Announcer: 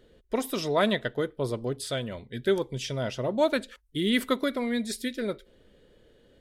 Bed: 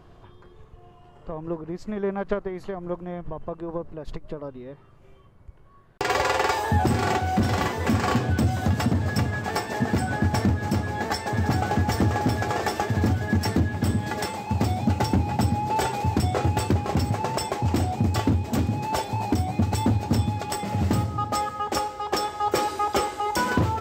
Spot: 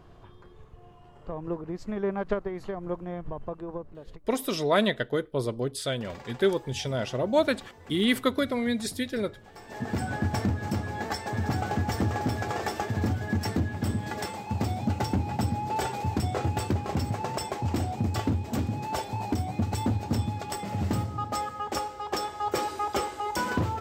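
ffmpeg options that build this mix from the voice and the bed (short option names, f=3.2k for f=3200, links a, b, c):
-filter_complex "[0:a]adelay=3950,volume=1dB[a];[1:a]volume=16.5dB,afade=t=out:st=3.41:d=0.99:silence=0.0841395,afade=t=in:st=9.56:d=0.46:silence=0.11885[b];[a][b]amix=inputs=2:normalize=0"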